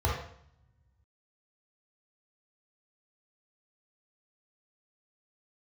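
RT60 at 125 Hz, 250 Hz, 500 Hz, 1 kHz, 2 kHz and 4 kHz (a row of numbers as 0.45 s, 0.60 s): 1.9 s, 1.4 s, 0.60 s, 0.65 s, 0.65 s, 0.60 s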